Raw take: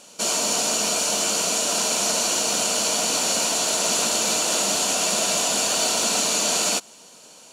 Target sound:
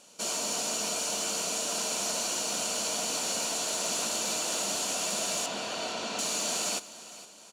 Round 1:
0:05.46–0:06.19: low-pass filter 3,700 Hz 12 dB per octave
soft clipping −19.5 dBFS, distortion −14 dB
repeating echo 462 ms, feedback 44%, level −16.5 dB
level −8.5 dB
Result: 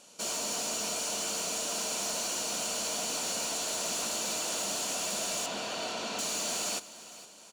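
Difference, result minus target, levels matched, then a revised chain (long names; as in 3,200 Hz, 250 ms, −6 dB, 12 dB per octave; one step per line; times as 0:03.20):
soft clipping: distortion +12 dB
0:05.46–0:06.19: low-pass filter 3,700 Hz 12 dB per octave
soft clipping −11 dBFS, distortion −26 dB
repeating echo 462 ms, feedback 44%, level −16.5 dB
level −8.5 dB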